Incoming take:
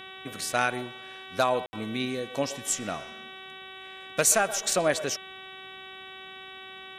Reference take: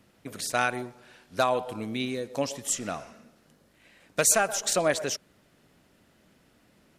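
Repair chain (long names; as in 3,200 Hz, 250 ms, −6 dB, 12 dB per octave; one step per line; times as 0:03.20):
hum removal 379.7 Hz, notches 10
ambience match 0:01.66–0:01.73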